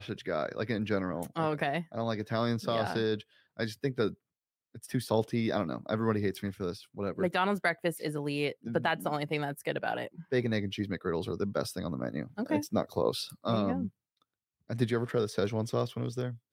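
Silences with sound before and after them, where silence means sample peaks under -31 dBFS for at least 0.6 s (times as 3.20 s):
4.09–4.94 s
13.86–14.70 s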